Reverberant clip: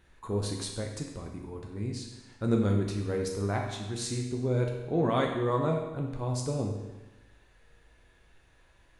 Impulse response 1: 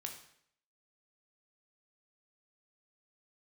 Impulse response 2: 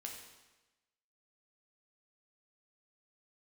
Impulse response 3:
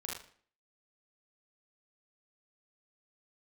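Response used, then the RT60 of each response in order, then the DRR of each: 2; 0.65 s, 1.1 s, 0.50 s; 2.5 dB, 0.0 dB, -4.0 dB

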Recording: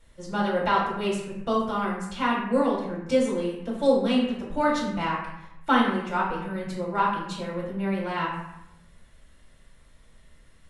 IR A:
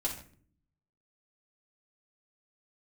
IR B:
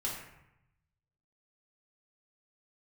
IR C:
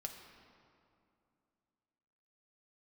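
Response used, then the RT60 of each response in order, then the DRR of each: B; no single decay rate, 0.85 s, 2.6 s; -5.0 dB, -5.0 dB, 2.5 dB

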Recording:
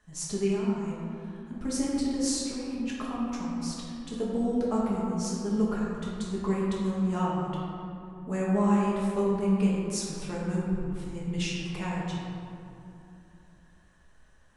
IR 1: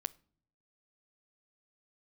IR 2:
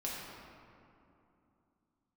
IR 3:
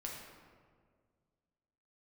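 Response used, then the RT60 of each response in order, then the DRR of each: 2; no single decay rate, 2.8 s, 1.8 s; 17.5 dB, -6.0 dB, -2.5 dB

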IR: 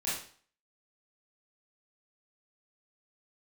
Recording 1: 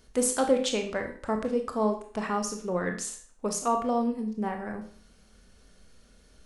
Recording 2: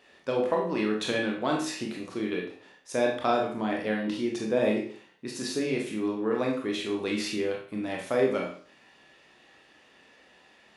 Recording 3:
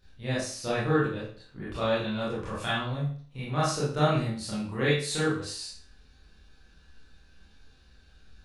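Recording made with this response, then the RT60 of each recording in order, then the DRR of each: 3; 0.45 s, 0.45 s, 0.45 s; 4.0 dB, -1.0 dB, -10.0 dB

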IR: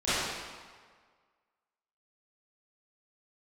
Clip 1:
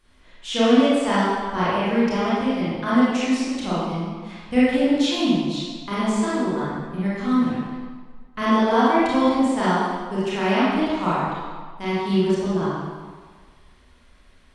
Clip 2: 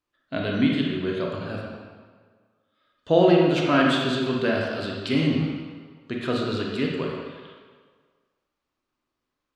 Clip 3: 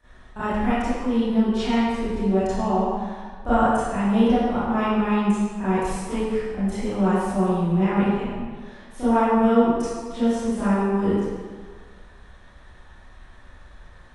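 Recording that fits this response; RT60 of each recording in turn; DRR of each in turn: 3; 1.6 s, 1.6 s, 1.6 s; -10.5 dB, -1.5 dB, -17.0 dB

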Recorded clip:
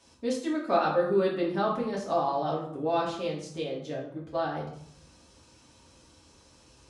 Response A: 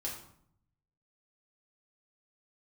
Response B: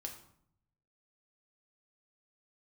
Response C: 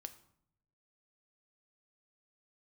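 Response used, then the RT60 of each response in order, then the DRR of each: A; 0.65 s, 0.65 s, 0.70 s; -4.5 dB, 2.0 dB, 9.0 dB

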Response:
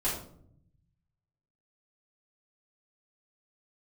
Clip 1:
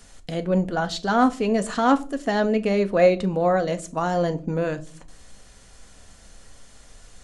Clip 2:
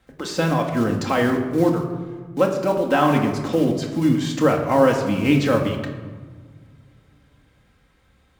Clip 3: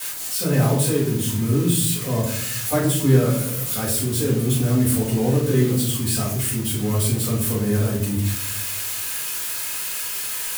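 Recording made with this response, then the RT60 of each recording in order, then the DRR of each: 3; no single decay rate, 1.5 s, 0.65 s; 9.0 dB, 1.0 dB, -8.5 dB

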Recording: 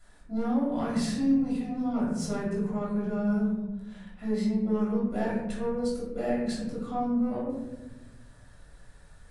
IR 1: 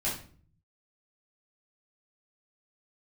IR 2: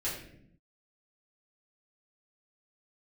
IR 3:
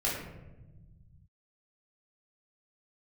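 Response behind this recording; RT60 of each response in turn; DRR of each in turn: 3; 0.45 s, 0.65 s, 1.1 s; -9.0 dB, -9.5 dB, -7.0 dB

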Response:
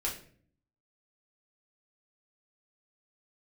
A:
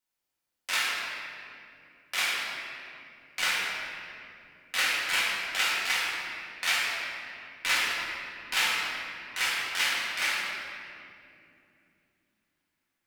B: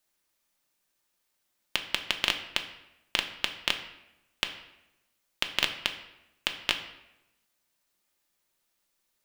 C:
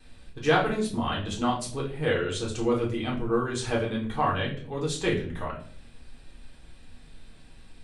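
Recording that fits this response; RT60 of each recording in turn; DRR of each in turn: C; 2.7 s, 0.90 s, 0.50 s; -7.5 dB, 4.0 dB, -4.5 dB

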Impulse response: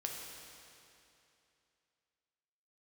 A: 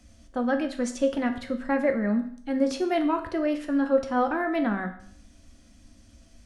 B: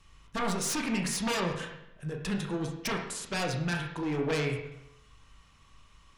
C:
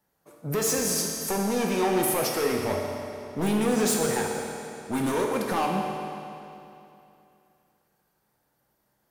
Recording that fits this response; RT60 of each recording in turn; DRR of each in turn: C; 0.60 s, 0.85 s, 2.8 s; 5.0 dB, 1.5 dB, -0.5 dB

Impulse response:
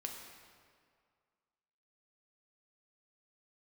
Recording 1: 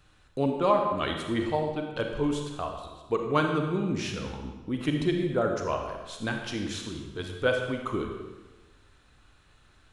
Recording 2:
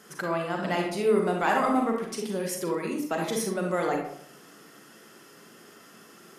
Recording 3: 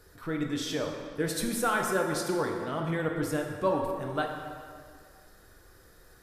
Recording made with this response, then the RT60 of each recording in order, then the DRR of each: 3; 1.2 s, 0.65 s, 2.1 s; 3.0 dB, 0.5 dB, 1.0 dB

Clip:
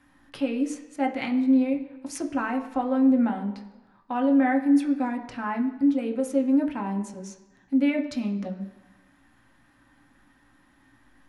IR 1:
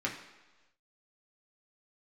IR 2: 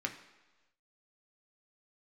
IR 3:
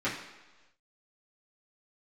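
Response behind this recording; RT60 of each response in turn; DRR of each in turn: 2; 1.2 s, 1.2 s, 1.2 s; -2.5 dB, 3.0 dB, -11.0 dB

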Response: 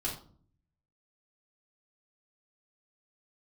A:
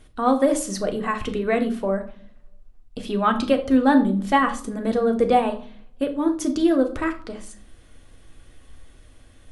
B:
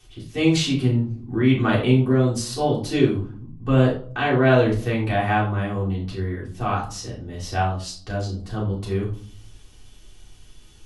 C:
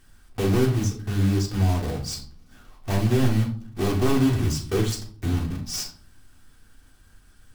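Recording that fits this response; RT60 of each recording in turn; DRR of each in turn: B; 0.50 s, 0.50 s, 0.50 s; 4.5 dB, -6.5 dB, 0.0 dB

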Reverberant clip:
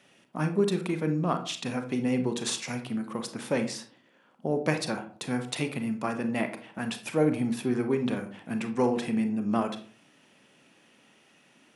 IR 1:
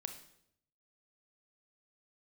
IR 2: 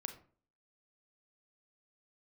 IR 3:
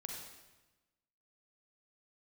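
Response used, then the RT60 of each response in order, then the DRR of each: 2; 0.70 s, 0.45 s, 1.1 s; 6.5 dB, 6.5 dB, 0.0 dB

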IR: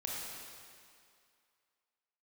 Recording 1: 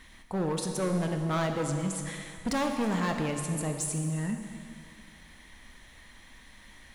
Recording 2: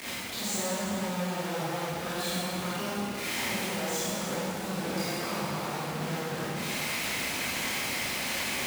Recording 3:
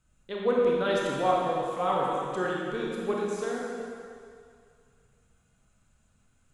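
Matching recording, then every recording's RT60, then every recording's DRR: 3; 2.3 s, 2.3 s, 2.3 s; 4.0 dB, -11.0 dB, -4.0 dB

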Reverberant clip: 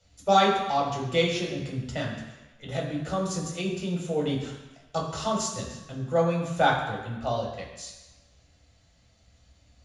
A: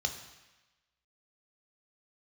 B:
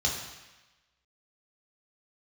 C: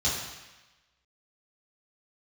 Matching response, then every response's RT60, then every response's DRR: B; 1.1 s, 1.1 s, 1.1 s; 4.5 dB, -2.5 dB, -8.5 dB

